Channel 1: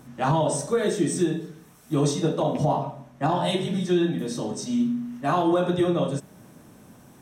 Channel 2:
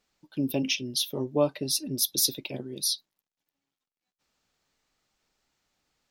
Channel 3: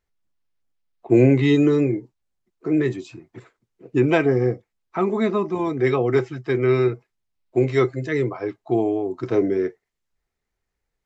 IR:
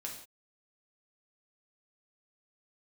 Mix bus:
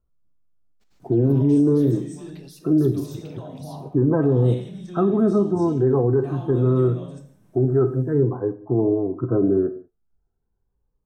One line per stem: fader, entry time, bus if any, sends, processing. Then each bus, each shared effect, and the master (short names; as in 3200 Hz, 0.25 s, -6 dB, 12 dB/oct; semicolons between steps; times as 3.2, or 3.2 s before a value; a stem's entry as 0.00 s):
-11.0 dB, 1.00 s, bus A, send -7 dB, dry
-6.5 dB, 0.80 s, bus A, send -22 dB, spectral compressor 2:1
-2.5 dB, 0.00 s, no bus, send -4 dB, steep low-pass 1500 Hz 72 dB/oct; cascading phaser rising 0.44 Hz
bus A: 0.0 dB, level quantiser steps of 14 dB; limiter -40.5 dBFS, peak gain reduction 23 dB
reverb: on, pre-delay 3 ms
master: low shelf 280 Hz +8.5 dB; limiter -10.5 dBFS, peak gain reduction 10.5 dB